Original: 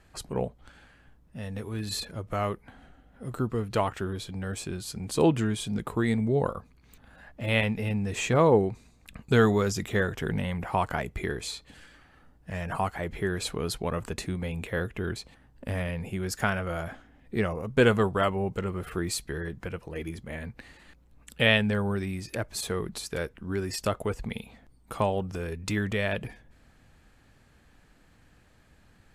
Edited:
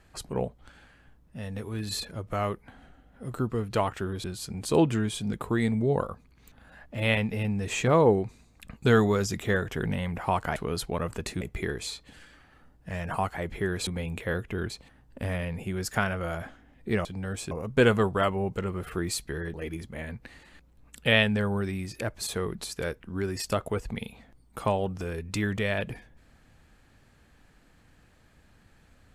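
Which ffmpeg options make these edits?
-filter_complex "[0:a]asplit=8[a][b][c][d][e][f][g][h];[a]atrim=end=4.242[i];[b]atrim=start=4.698:end=11.022[j];[c]atrim=start=13.478:end=14.332[k];[d]atrim=start=11.018:end=13.482[l];[e]atrim=start=14.328:end=17.512[m];[f]atrim=start=4.238:end=4.702[n];[g]atrim=start=17.508:end=19.542[o];[h]atrim=start=19.878[p];[i][j]acrossfade=d=0.004:c1=hsin:c2=hsin[q];[q][k]acrossfade=d=0.004:c1=hsin:c2=hsin[r];[r][l]acrossfade=d=0.004:c1=hsin:c2=hsin[s];[s][m]acrossfade=d=0.004:c1=hsin:c2=hsin[t];[t][n]acrossfade=d=0.004:c1=hsin:c2=hsin[u];[u][o]acrossfade=d=0.004:c1=hsin:c2=hsin[v];[v][p]acrossfade=d=0.004:c1=hsin:c2=hsin"

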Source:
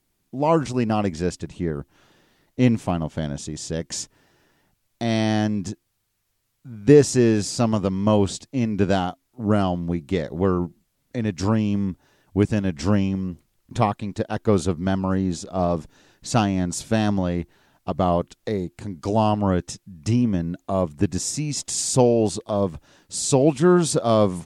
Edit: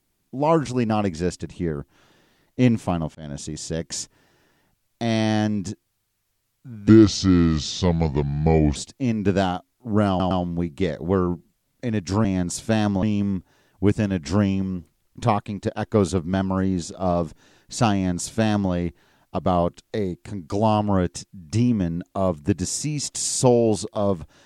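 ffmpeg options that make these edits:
-filter_complex "[0:a]asplit=8[a][b][c][d][e][f][g][h];[a]atrim=end=3.15,asetpts=PTS-STARTPTS,afade=t=out:st=3.146:d=0.004:c=hsin[i];[b]atrim=start=3.15:end=6.894,asetpts=PTS-STARTPTS,afade=t=in:d=0.25[j];[c]atrim=start=6.89:end=8.29,asetpts=PTS-STARTPTS,asetrate=33075,aresample=44100[k];[d]atrim=start=8.286:end=9.732[l];[e]atrim=start=9.618:end=9.732[m];[f]atrim=start=9.618:end=11.562[n];[g]atrim=start=16.468:end=17.252[o];[h]atrim=start=11.558[p];[i][j]concat=n=2:v=0:a=1[q];[q][k]acrossfade=d=0.004:c1=hsin:c2=hsin[r];[r][l]acrossfade=d=0.004:c1=hsin:c2=hsin[s];[s][m]acrossfade=d=0.004:c1=hsin:c2=hsin[t];[t][n]acrossfade=d=0.004:c1=hsin:c2=hsin[u];[u][o]acrossfade=d=0.004:c1=hsin:c2=hsin[v];[v][p]acrossfade=d=0.004:c1=hsin:c2=hsin"

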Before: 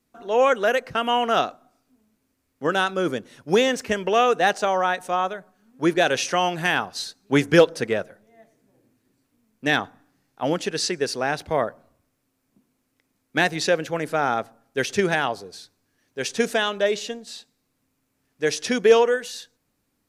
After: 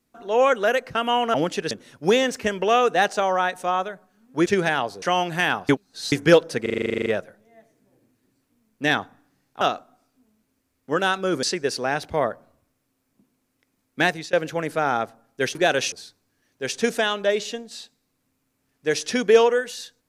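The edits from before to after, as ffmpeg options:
-filter_complex "[0:a]asplit=23[a][b][c][d][e][f][g][h][i][j][k][l][m][n][o][p][q][r][s][t][u][v][w];[a]atrim=end=1.342[x];[b]atrim=start=10.428:end=10.802[y];[c]atrim=start=3.158:end=5.912[z];[d]atrim=start=14.918:end=15.482[aa];[e]atrim=start=6.278:end=6.952[ab];[f]atrim=start=6.948:end=7.382,asetpts=PTS-STARTPTS,areverse[ac];[g]atrim=start=7.378:end=7.922[ad];[h]atrim=start=7.878:end=7.922[ae];[i]atrim=start=7.878:end=7.922[af];[j]atrim=start=7.878:end=7.922[ag];[k]atrim=start=7.878:end=7.922[ah];[l]atrim=start=7.878:end=7.922[ai];[m]atrim=start=7.878:end=7.922[aj];[n]atrim=start=7.878:end=7.922[ak];[o]atrim=start=7.878:end=7.922[al];[p]atrim=start=7.878:end=7.922[am];[q]atrim=start=7.878:end=7.922[an];[r]atrim=start=7.878:end=10.432[ao];[s]atrim=start=1.338:end=3.162[ap];[t]atrim=start=10.798:end=13.7,asetpts=PTS-STARTPTS,afade=t=out:st=2.632:d=0.27:silence=0.0630957[aq];[u]atrim=start=13.7:end=14.922,asetpts=PTS-STARTPTS,afade=t=in:d=0.004:c=hsin:silence=0.0630957[ar];[v]atrim=start=5.908:end=6.282[as];[w]atrim=start=15.478[at];[x][y]acrossfade=d=0.004:c1=hsin:c2=hsin[au];[au][z]acrossfade=d=0.004:c1=hsin:c2=hsin[av];[av][aa]acrossfade=d=0.004:c1=hsin:c2=hsin[aw];[aw][ab]acrossfade=d=0.004:c1=hsin:c2=hsin[ax];[ax][ac]acrossfade=d=0.004:c1=hsin:c2=hsin[ay];[ay][ad]acrossfade=d=0.004:c1=hsin:c2=hsin[az];[az][ae]acrossfade=d=0.004:c1=hsin:c2=hsin[ba];[ba][af]acrossfade=d=0.004:c1=hsin:c2=hsin[bb];[bb][ag]acrossfade=d=0.004:c1=hsin:c2=hsin[bc];[bc][ah]acrossfade=d=0.004:c1=hsin:c2=hsin[bd];[bd][ai]acrossfade=d=0.004:c1=hsin:c2=hsin[be];[be][aj]acrossfade=d=0.004:c1=hsin:c2=hsin[bf];[bf][ak]acrossfade=d=0.004:c1=hsin:c2=hsin[bg];[bg][al]acrossfade=d=0.004:c1=hsin:c2=hsin[bh];[bh][am]acrossfade=d=0.004:c1=hsin:c2=hsin[bi];[bi][an]acrossfade=d=0.004:c1=hsin:c2=hsin[bj];[bj][ao]acrossfade=d=0.004:c1=hsin:c2=hsin[bk];[bk][ap]acrossfade=d=0.004:c1=hsin:c2=hsin[bl];[aq][ar]concat=n=2:v=0:a=1[bm];[bl][bm]acrossfade=d=0.004:c1=hsin:c2=hsin[bn];[bn][as]acrossfade=d=0.004:c1=hsin:c2=hsin[bo];[bo][at]acrossfade=d=0.004:c1=hsin:c2=hsin"

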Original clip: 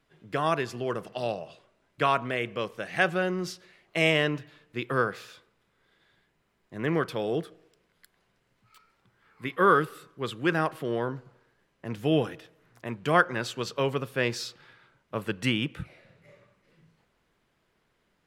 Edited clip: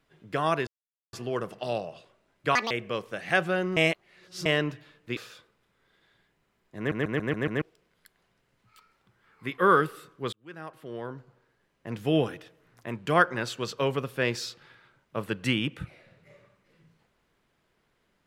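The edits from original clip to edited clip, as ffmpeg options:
-filter_complex "[0:a]asplit=14[a][b][c][d][e][f][g][h][i][j][k][l][m][n];[a]atrim=end=0.67,asetpts=PTS-STARTPTS,afade=t=out:st=0.666:d=0.004:c=hsin,apad=pad_dur=0.46[o];[b]atrim=start=0.67:end=2.094,asetpts=PTS-STARTPTS,afade=t=in:d=0.004:c=hsin[p];[c]atrim=start=2.09:end=2.37,asetpts=PTS-STARTPTS,asetrate=78939,aresample=44100,atrim=end_sample=6898,asetpts=PTS-STARTPTS[q];[d]atrim=start=2.366:end=3.432[r];[e]atrim=start=3.428:end=4.122,asetpts=PTS-STARTPTS,areverse[s];[f]atrim=start=4.118:end=4.832[t];[g]atrim=start=5.148:end=6.902[u];[h]atrim=start=6.758:end=6.902[v];[i]atrim=start=6.758:end=6.902[w];[j]atrim=start=6.758:end=6.902[x];[k]atrim=start=6.758:end=6.902[y];[l]atrim=start=6.758:end=6.902[z];[m]atrim=start=7.598:end=10.31,asetpts=PTS-STARTPTS,afade=t=out:st=2.708:d=0.004:c=hsin[aa];[n]atrim=start=10.31,asetpts=PTS-STARTPTS,afade=t=in:d=1.65[ab];[o][p]concat=n=2:v=0:a=1[ac];[ac][q]acrossfade=d=0.004:c1=hsin:c2=hsin[ad];[ad][r]acrossfade=d=0.004:c1=hsin:c2=hsin[ae];[ae][s]acrossfade=d=0.004:c1=hsin:c2=hsin[af];[af][t]acrossfade=d=0.004:c1=hsin:c2=hsin[ag];[ag][u]acrossfade=d=0.004:c1=hsin:c2=hsin[ah];[ah][v]acrossfade=d=0.004:c1=hsin:c2=hsin[ai];[ai][w]acrossfade=d=0.004:c1=hsin:c2=hsin[aj];[aj][x]acrossfade=d=0.004:c1=hsin:c2=hsin[ak];[ak][y]acrossfade=d=0.004:c1=hsin:c2=hsin[al];[al][z]acrossfade=d=0.004:c1=hsin:c2=hsin[am];[aa][ab]concat=n=2:v=0:a=1[an];[am][an]acrossfade=d=0.004:c1=hsin:c2=hsin"

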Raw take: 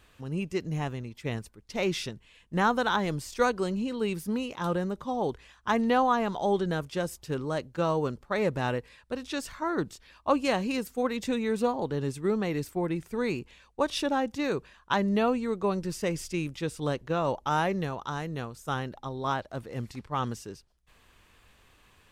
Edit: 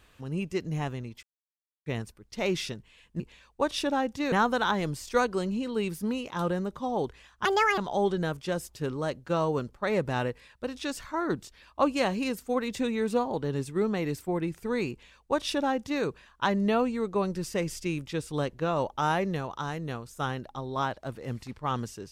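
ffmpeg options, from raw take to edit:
-filter_complex "[0:a]asplit=6[a][b][c][d][e][f];[a]atrim=end=1.23,asetpts=PTS-STARTPTS,afade=t=out:st=1.226:d=0.004:c=hsin,apad=pad_dur=0.63[g];[b]atrim=start=1.23:end=2.572,asetpts=PTS-STARTPTS,afade=t=in:d=0.004:c=hsin[h];[c]atrim=start=13.388:end=14.512[i];[d]atrim=start=2.568:end=5.704[j];[e]atrim=start=5.7:end=6.26,asetpts=PTS-STARTPTS,asetrate=75411,aresample=44100,atrim=end_sample=14442,asetpts=PTS-STARTPTS[k];[f]atrim=start=6.256[l];[g][h]concat=n=2:v=0:a=1[m];[m][i]acrossfade=d=0.004:c1=hsin:c2=hsin[n];[n][j]acrossfade=d=0.004:c1=hsin:c2=hsin[o];[o][k]acrossfade=d=0.004:c1=hsin:c2=hsin[p];[p][l]acrossfade=d=0.004:c1=hsin:c2=hsin"

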